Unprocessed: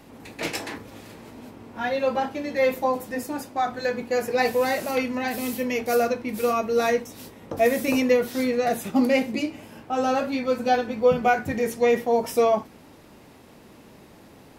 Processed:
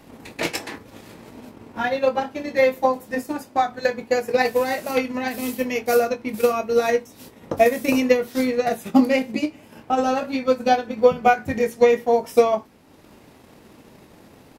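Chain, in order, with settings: transient shaper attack +7 dB, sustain -5 dB; doubler 23 ms -12 dB

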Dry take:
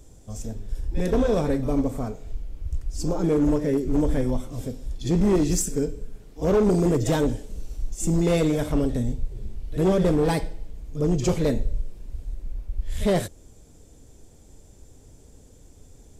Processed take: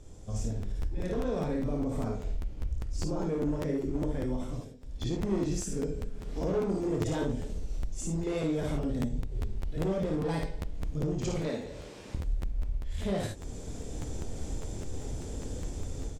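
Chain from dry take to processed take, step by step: 11.43–12.15 weighting filter A; AGC gain up to 15 dB; limiter -9.5 dBFS, peak gain reduction 7 dB; compressor 5:1, threshold -30 dBFS, peak gain reduction 16 dB; air absorption 51 m; 4.44–5.05 dip -17 dB, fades 0.25 s; early reflections 26 ms -6 dB, 55 ms -4 dB, 75 ms -8.5 dB; crackling interface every 0.20 s, samples 512, repeat, from 0.61; gain -2.5 dB

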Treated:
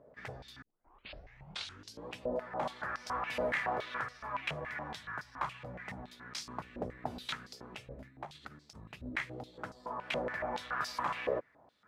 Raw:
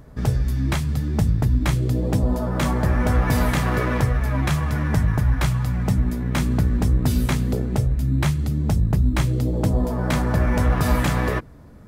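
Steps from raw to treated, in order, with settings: 0.62 tape start 1.48 s; 8.07–8.76 negative-ratio compressor -23 dBFS, ratio -0.5; stepped band-pass 7.1 Hz 560–5000 Hz

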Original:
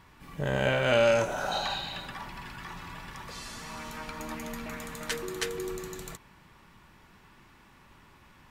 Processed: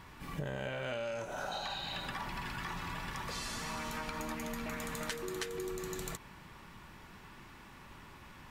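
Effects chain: compressor 12:1, threshold -39 dBFS, peak gain reduction 20 dB; gain +3.5 dB

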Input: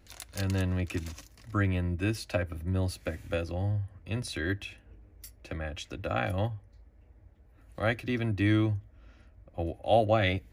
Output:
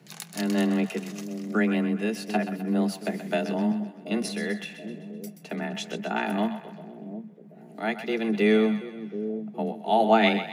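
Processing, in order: random-step tremolo; split-band echo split 490 Hz, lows 0.73 s, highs 0.128 s, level -10.5 dB; frequency shift +110 Hz; gain +6 dB

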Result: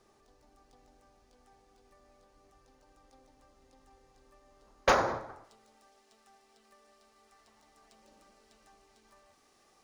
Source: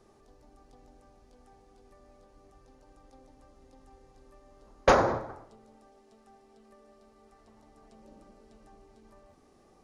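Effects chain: median filter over 3 samples; tilt shelf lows -4.5 dB, about 850 Hz, from 5.43 s lows -9.5 dB; gain -3.5 dB

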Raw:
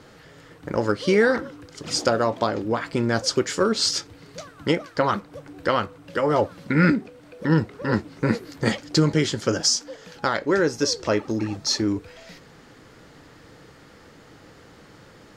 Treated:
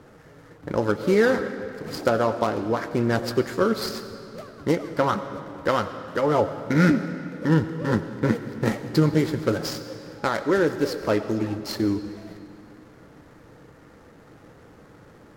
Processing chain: median filter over 15 samples; on a send at -10.5 dB: reverb RT60 2.7 s, pre-delay 50 ms; on the sum: Vorbis 64 kbps 44100 Hz

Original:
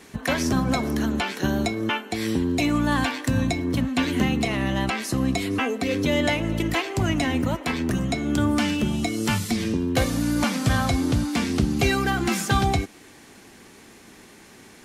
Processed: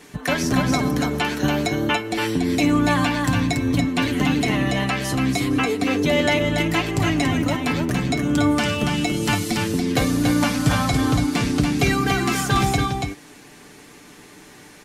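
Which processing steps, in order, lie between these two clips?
comb 6.8 ms, depth 47%; echo 0.284 s -4.5 dB; gain +1 dB

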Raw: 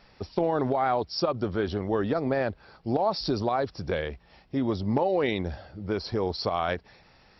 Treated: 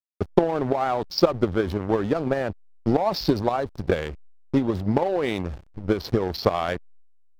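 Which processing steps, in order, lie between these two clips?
backlash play -32 dBFS; transient shaper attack +11 dB, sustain +7 dB

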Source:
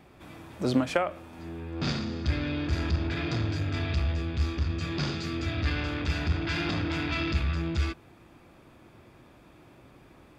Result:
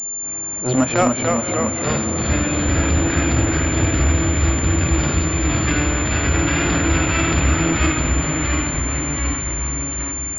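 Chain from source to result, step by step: notches 50/100/150/200/250 Hz; transient shaper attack -11 dB, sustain +2 dB; in parallel at -4.5 dB: sample gate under -28.5 dBFS; on the sum: echoes that change speed 0.232 s, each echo -1 st, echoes 3; on a send: diffused feedback echo 0.527 s, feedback 64%, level -11 dB; on the sum: pulse-width modulation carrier 7200 Hz; gain +7 dB

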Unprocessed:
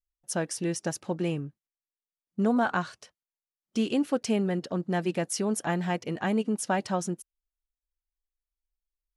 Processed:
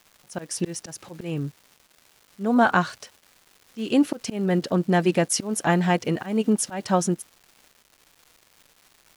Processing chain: auto swell 0.243 s; crackle 550/s -50 dBFS; gain +8 dB

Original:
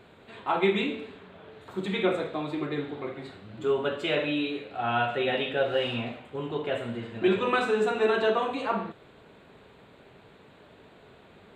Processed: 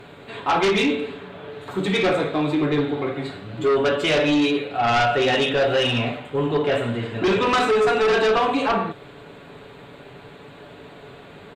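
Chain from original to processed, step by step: comb 7 ms, depth 43%; in parallel at -9 dB: sine folder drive 12 dB, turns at -11 dBFS

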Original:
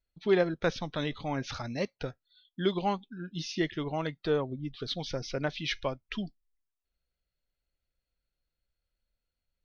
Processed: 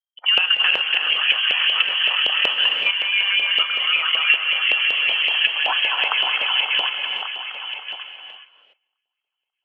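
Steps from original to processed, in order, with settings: regenerating reverse delay 0.142 s, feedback 84%, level -4 dB; gate -50 dBFS, range -34 dB; level quantiser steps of 13 dB; inverted band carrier 3200 Hz; compressor 5:1, threshold -38 dBFS, peak gain reduction 13.5 dB; LFO high-pass saw up 5.3 Hz 530–2400 Hz; HPF 420 Hz 6 dB/oct; reverb, pre-delay 3 ms, DRR 5.5 dB; maximiser +20 dB; gain -1 dB

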